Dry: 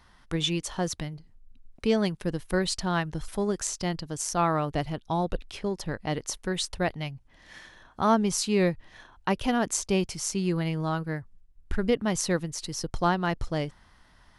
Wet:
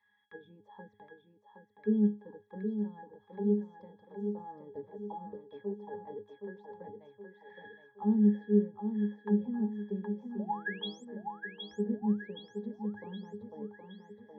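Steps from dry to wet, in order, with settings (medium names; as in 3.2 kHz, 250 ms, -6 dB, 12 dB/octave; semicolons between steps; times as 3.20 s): bass shelf 91 Hz -5.5 dB; in parallel at +1.5 dB: compression, threshold -38 dBFS, peak gain reduction 19 dB; on the sum: auto-wah 250–2300 Hz, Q 2.1, down, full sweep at -21 dBFS; painted sound rise, 10.39–11.05 s, 530–8300 Hz -27 dBFS; pitch-class resonator G#, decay 0.27 s; on a send: thinning echo 769 ms, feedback 52%, high-pass 180 Hz, level -5 dB; on the sum: trim +7.5 dB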